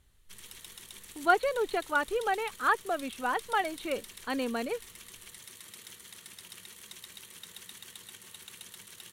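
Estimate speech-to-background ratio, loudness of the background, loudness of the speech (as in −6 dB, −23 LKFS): 15.5 dB, −46.5 LKFS, −31.0 LKFS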